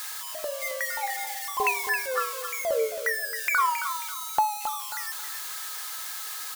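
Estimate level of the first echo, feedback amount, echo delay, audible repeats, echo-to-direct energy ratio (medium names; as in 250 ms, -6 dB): -9.5 dB, 31%, 269 ms, 3, -9.0 dB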